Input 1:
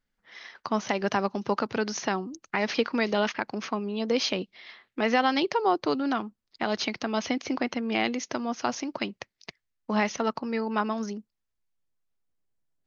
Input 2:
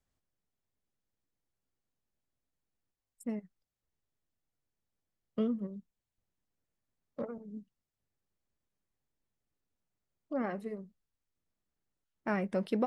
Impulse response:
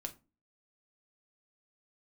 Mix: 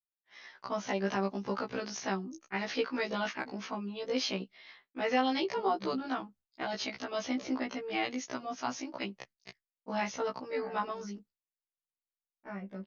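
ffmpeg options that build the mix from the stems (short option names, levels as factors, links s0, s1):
-filter_complex "[0:a]volume=0.631[s0];[1:a]lowpass=f=5500:w=0.5412,lowpass=f=5500:w=1.3066,adelay=200,volume=0.398[s1];[s0][s1]amix=inputs=2:normalize=0,agate=range=0.0224:threshold=0.00282:ratio=3:detection=peak,afftfilt=real='re*1.73*eq(mod(b,3),0)':imag='im*1.73*eq(mod(b,3),0)':win_size=2048:overlap=0.75"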